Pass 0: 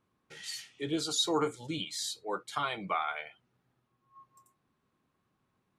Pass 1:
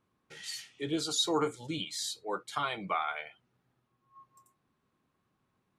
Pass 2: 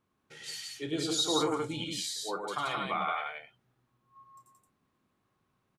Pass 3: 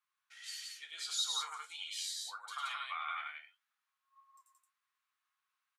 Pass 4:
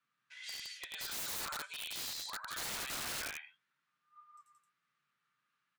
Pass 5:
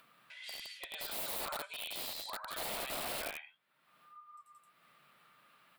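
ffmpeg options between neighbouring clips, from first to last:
-af anull
-af "aecho=1:1:32.07|102|174.9:0.282|0.562|0.708,volume=-1.5dB"
-af "highpass=f=1.2k:w=0.5412,highpass=f=1.2k:w=1.3066,flanger=delay=7:depth=5.2:regen=56:speed=1.6:shape=triangular"
-af "aemphasis=mode=reproduction:type=bsi,afreqshift=120,aeval=exprs='(mod(106*val(0)+1,2)-1)/106':c=same,volume=5.5dB"
-af "equalizer=f=100:t=o:w=0.67:g=-10,equalizer=f=630:t=o:w=0.67:g=9,equalizer=f=1.6k:t=o:w=0.67:g=-6,equalizer=f=6.3k:t=o:w=0.67:g=-12,acompressor=mode=upward:threshold=-52dB:ratio=2.5,volume=2.5dB"

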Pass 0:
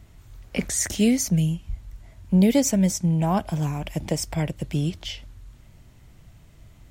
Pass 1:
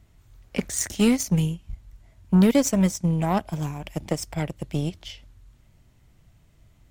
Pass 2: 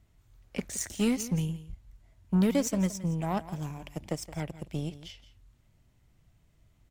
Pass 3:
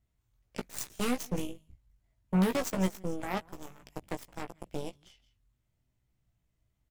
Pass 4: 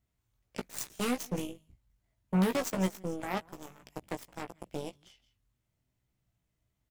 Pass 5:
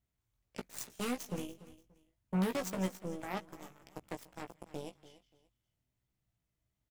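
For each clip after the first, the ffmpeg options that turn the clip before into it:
-af "aeval=exprs='0.355*(cos(1*acos(clip(val(0)/0.355,-1,1)))-cos(1*PI/2))+0.0282*(cos(7*acos(clip(val(0)/0.355,-1,1)))-cos(7*PI/2))':c=same"
-af "aecho=1:1:169:0.168,volume=-7.5dB"
-filter_complex "[0:a]highshelf=f=11k:g=4.5,aeval=exprs='0.15*(cos(1*acos(clip(val(0)/0.15,-1,1)))-cos(1*PI/2))+0.0188*(cos(4*acos(clip(val(0)/0.15,-1,1)))-cos(4*PI/2))+0.0299*(cos(6*acos(clip(val(0)/0.15,-1,1)))-cos(6*PI/2))+0.0299*(cos(7*acos(clip(val(0)/0.15,-1,1)))-cos(7*PI/2))':c=same,asplit=2[a][b];[b]adelay=16,volume=-6dB[c];[a][c]amix=inputs=2:normalize=0,volume=-5.5dB"
-af "lowshelf=f=60:g=-9.5"
-af "aecho=1:1:290|580:0.141|0.0367,volume=-5dB"

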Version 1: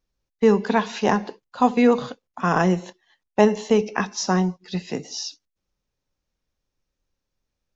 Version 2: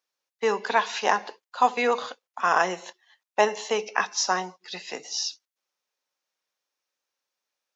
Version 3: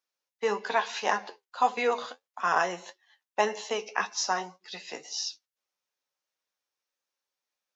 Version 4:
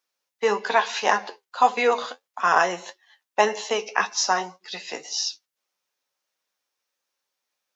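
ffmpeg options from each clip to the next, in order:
-af "highpass=720,volume=2dB"
-af "flanger=delay=8.8:depth=4.5:regen=48:speed=1.7:shape=triangular"
-af "lowshelf=f=120:g=-7.5,volume=6.5dB"

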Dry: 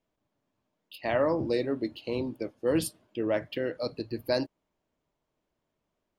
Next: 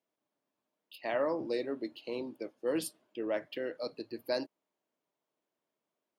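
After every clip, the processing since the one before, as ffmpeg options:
-af "highpass=260,volume=-5dB"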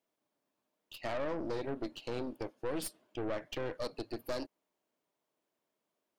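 -af "acompressor=threshold=-34dB:ratio=5,aeval=exprs='(tanh(89.1*val(0)+0.8)-tanh(0.8))/89.1':c=same,volume=7dB"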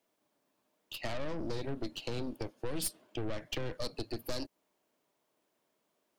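-filter_complex "[0:a]acrossover=split=200|3000[a][b][c];[b]acompressor=threshold=-45dB:ratio=6[d];[a][d][c]amix=inputs=3:normalize=0,volume=6.5dB"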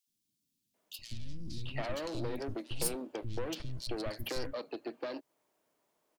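-filter_complex "[0:a]acrossover=split=230|3300[a][b][c];[a]adelay=70[d];[b]adelay=740[e];[d][e][c]amix=inputs=3:normalize=0,volume=1.5dB"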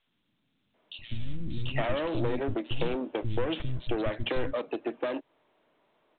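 -af "volume=8dB" -ar 8000 -c:a pcm_mulaw

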